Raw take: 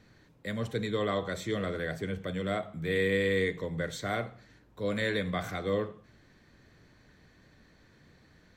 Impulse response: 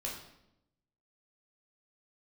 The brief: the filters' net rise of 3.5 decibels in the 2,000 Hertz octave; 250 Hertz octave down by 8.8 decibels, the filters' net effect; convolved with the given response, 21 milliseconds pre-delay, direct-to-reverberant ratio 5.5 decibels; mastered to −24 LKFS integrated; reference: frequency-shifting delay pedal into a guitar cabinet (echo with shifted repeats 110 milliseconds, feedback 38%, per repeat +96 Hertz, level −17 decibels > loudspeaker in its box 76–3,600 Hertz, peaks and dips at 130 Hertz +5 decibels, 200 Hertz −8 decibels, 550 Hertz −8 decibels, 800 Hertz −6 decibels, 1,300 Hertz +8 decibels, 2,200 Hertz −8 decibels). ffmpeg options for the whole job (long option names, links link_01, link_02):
-filter_complex "[0:a]equalizer=frequency=250:width_type=o:gain=-8,equalizer=frequency=2000:width_type=o:gain=6.5,asplit=2[link_01][link_02];[1:a]atrim=start_sample=2205,adelay=21[link_03];[link_02][link_03]afir=irnorm=-1:irlink=0,volume=-7dB[link_04];[link_01][link_04]amix=inputs=2:normalize=0,asplit=4[link_05][link_06][link_07][link_08];[link_06]adelay=110,afreqshift=96,volume=-17dB[link_09];[link_07]adelay=220,afreqshift=192,volume=-25.4dB[link_10];[link_08]adelay=330,afreqshift=288,volume=-33.8dB[link_11];[link_05][link_09][link_10][link_11]amix=inputs=4:normalize=0,highpass=76,equalizer=frequency=130:width_type=q:width=4:gain=5,equalizer=frequency=200:width_type=q:width=4:gain=-8,equalizer=frequency=550:width_type=q:width=4:gain=-8,equalizer=frequency=800:width_type=q:width=4:gain=-6,equalizer=frequency=1300:width_type=q:width=4:gain=8,equalizer=frequency=2200:width_type=q:width=4:gain=-8,lowpass=frequency=3600:width=0.5412,lowpass=frequency=3600:width=1.3066,volume=8dB"